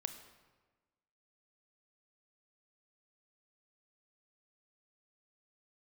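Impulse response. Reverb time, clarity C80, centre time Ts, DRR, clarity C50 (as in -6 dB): 1.3 s, 11.5 dB, 15 ms, 8.5 dB, 10.0 dB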